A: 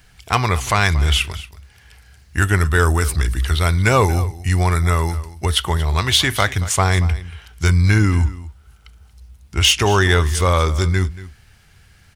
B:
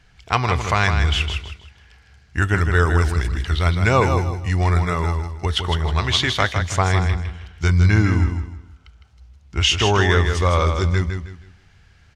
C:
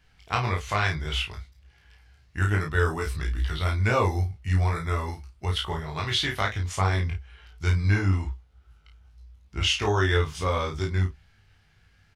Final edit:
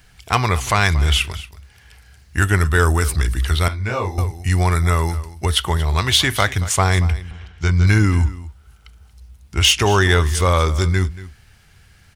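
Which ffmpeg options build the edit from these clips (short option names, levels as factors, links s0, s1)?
-filter_complex "[0:a]asplit=3[s0][s1][s2];[s0]atrim=end=3.682[s3];[2:a]atrim=start=3.678:end=4.182[s4];[s1]atrim=start=4.178:end=7.312[s5];[1:a]atrim=start=7.308:end=7.872[s6];[s2]atrim=start=7.868[s7];[s3][s4]acrossfade=d=0.004:c1=hsin:c2=hsin[s8];[s8][s5]acrossfade=d=0.004:c1=hsin:c2=hsin[s9];[s9][s6]acrossfade=d=0.004:c1=hsin:c2=hsin[s10];[s10][s7]acrossfade=d=0.004:c1=hsin:c2=hsin"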